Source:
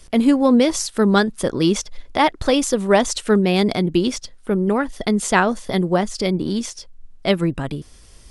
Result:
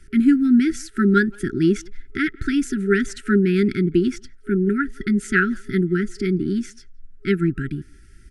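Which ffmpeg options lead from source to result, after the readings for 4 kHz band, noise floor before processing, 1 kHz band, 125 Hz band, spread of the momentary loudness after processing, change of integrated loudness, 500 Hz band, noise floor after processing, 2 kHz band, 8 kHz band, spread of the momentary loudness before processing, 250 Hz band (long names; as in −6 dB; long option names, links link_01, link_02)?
−12.0 dB, −46 dBFS, −9.5 dB, 0.0 dB, 10 LU, −1.5 dB, −4.5 dB, −47 dBFS, +1.0 dB, −11.5 dB, 10 LU, 0.0 dB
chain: -filter_complex "[0:a]highshelf=frequency=2400:width_type=q:width=1.5:gain=-10.5,afftfilt=real='re*(1-between(b*sr/4096,410,1300))':imag='im*(1-between(b*sr/4096,410,1300))':win_size=4096:overlap=0.75,asplit=2[link_01][link_02];[link_02]adelay=170,highpass=300,lowpass=3400,asoftclip=type=hard:threshold=-13.5dB,volume=-26dB[link_03];[link_01][link_03]amix=inputs=2:normalize=0"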